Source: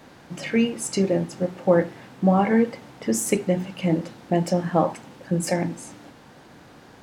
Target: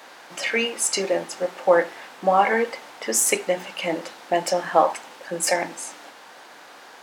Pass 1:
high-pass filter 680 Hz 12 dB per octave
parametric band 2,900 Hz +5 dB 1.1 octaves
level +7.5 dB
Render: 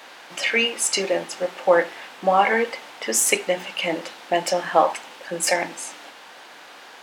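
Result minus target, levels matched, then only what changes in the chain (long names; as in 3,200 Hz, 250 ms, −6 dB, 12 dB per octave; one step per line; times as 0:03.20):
4,000 Hz band +3.0 dB
remove: parametric band 2,900 Hz +5 dB 1.1 octaves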